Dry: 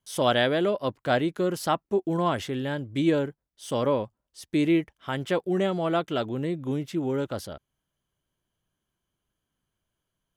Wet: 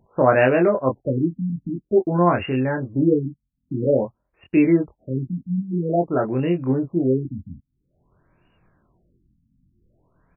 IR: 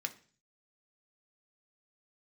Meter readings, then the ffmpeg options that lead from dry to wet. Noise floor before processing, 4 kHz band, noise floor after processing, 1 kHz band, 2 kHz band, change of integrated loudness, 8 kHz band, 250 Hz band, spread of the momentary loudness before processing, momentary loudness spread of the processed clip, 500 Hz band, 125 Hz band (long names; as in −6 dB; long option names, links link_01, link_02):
−84 dBFS, below −10 dB, −76 dBFS, +3.5 dB, +3.5 dB, +5.5 dB, below −35 dB, +6.5 dB, 10 LU, 11 LU, +5.5 dB, +7.5 dB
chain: -filter_complex "[0:a]asplit=2[link_01][link_02];[link_02]adelay=23,volume=-3.5dB[link_03];[link_01][link_03]amix=inputs=2:normalize=0,acrossover=split=3400[link_04][link_05];[link_05]acompressor=threshold=-49dB:ratio=4:attack=1:release=60[link_06];[link_04][link_06]amix=inputs=2:normalize=0,aexciter=amount=14.3:drive=6.4:freq=3400,acompressor=mode=upward:threshold=-33dB:ratio=2.5,afftfilt=real='re*lt(b*sr/1024,260*pow(2900/260,0.5+0.5*sin(2*PI*0.5*pts/sr)))':imag='im*lt(b*sr/1024,260*pow(2900/260,0.5+0.5*sin(2*PI*0.5*pts/sr)))':win_size=1024:overlap=0.75,volume=5.5dB"